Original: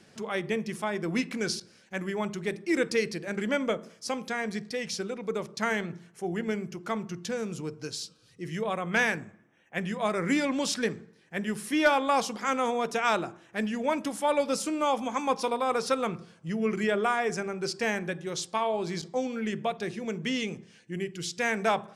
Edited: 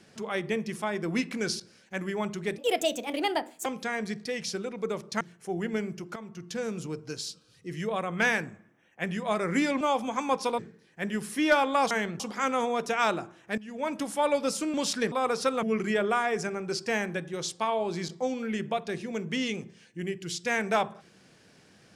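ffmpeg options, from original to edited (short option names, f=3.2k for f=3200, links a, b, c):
-filter_complex "[0:a]asplit=13[a][b][c][d][e][f][g][h][i][j][k][l][m];[a]atrim=end=2.584[n];[b]atrim=start=2.58:end=4.11,asetpts=PTS-STARTPTS,asetrate=62622,aresample=44100,atrim=end_sample=47516,asetpts=PTS-STARTPTS[o];[c]atrim=start=4.106:end=5.662[p];[d]atrim=start=5.948:end=6.9,asetpts=PTS-STARTPTS,afade=t=out:st=0.948:d=0.004:c=hsin:silence=0.188365[q];[e]atrim=start=6.9:end=10.552,asetpts=PTS-STARTPTS,afade=t=in:d=0.48:silence=0.188365[r];[f]atrim=start=14.788:end=15.572[s];[g]atrim=start=10.928:end=12.252[t];[h]atrim=start=5.658:end=5.952[u];[i]atrim=start=12.248:end=13.63,asetpts=PTS-STARTPTS,afade=t=out:st=1.378:d=0.004:c=hsin:silence=0.105925[v];[j]atrim=start=13.63:end=14.792,asetpts=PTS-STARTPTS,afade=t=in:d=0.45:silence=0.105925[w];[k]atrim=start=10.548:end=10.932[x];[l]atrim=start=15.568:end=16.082[y];[m]atrim=start=16.558[z];[n][o]acrossfade=d=0.004:c1=hsin:c2=hsin[aa];[aa][p]acrossfade=d=0.004:c1=hsin:c2=hsin[ab];[q][r]concat=n=2:v=0:a=1[ac];[ab][ac]acrossfade=d=0.004:c1=hsin:c2=hsin[ad];[ad][s]acrossfade=d=0.004:c1=hsin:c2=hsin[ae];[ae][t]acrossfade=d=0.004:c1=hsin:c2=hsin[af];[af][u]acrossfade=d=0.004:c1=hsin:c2=hsin[ag];[v][w]concat=n=2:v=0:a=1[ah];[ag][ah]acrossfade=d=0.004:c1=hsin:c2=hsin[ai];[ai][x]acrossfade=d=0.004:c1=hsin:c2=hsin[aj];[aj][y]acrossfade=d=0.004:c1=hsin:c2=hsin[ak];[ak][z]acrossfade=d=0.004:c1=hsin:c2=hsin"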